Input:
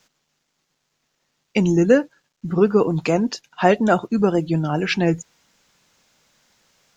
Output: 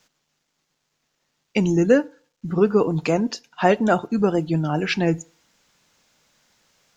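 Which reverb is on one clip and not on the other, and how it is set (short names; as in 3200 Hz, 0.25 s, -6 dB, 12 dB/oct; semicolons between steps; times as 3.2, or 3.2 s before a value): FDN reverb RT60 0.46 s, low-frequency decay 0.8×, high-frequency decay 0.75×, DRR 19 dB; gain -1.5 dB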